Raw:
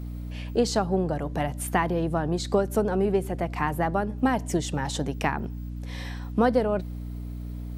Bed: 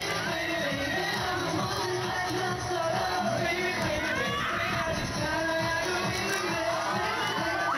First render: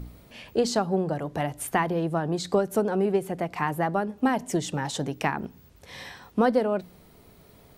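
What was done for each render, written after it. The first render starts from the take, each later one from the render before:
hum removal 60 Hz, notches 5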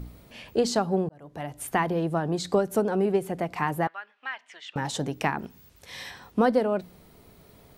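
0:01.09–0:01.83: fade in
0:03.87–0:04.76: flat-topped band-pass 2,200 Hz, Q 1.1
0:05.39–0:06.11: tilt shelving filter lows −4 dB, about 1,300 Hz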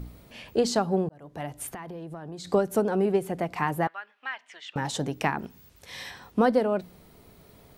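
0:01.70–0:02.47: downward compressor, threshold −36 dBFS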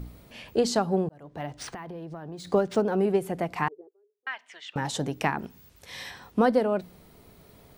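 0:01.22–0:02.98: linearly interpolated sample-rate reduction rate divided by 3×
0:03.68–0:04.27: flat-topped band-pass 410 Hz, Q 6.8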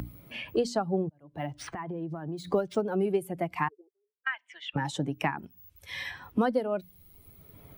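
spectral dynamics exaggerated over time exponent 1.5
multiband upward and downward compressor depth 70%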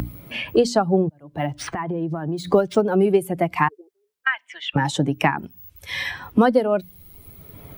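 level +10 dB

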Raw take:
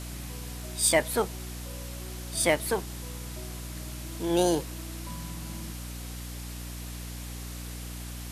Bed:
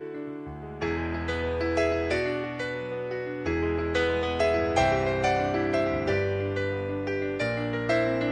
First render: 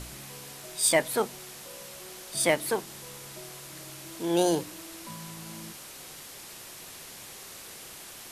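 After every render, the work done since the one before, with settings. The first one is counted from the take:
hum removal 60 Hz, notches 5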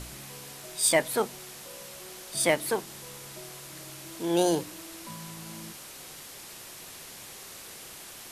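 no processing that can be heard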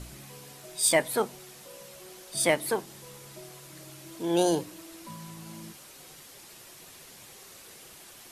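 broadband denoise 6 dB, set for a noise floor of −45 dBFS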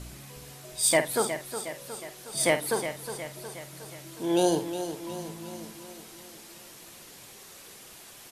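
double-tracking delay 50 ms −10.5 dB
on a send: repeating echo 363 ms, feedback 57%, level −10 dB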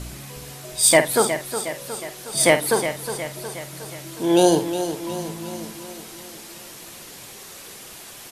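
level +8 dB

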